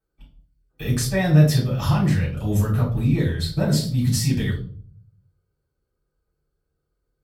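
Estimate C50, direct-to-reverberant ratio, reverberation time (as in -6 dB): 7.5 dB, -7.5 dB, 0.50 s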